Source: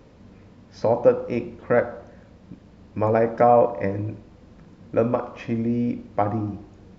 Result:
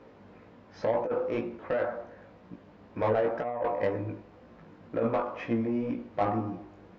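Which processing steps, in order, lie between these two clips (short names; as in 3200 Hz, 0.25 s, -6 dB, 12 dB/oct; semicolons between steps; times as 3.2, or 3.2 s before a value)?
high shelf 3400 Hz -10 dB; negative-ratio compressor -20 dBFS, ratio -0.5; overdrive pedal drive 18 dB, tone 2600 Hz, clips at -6.5 dBFS; chorus 2 Hz, delay 17 ms, depth 2.9 ms; gain -7 dB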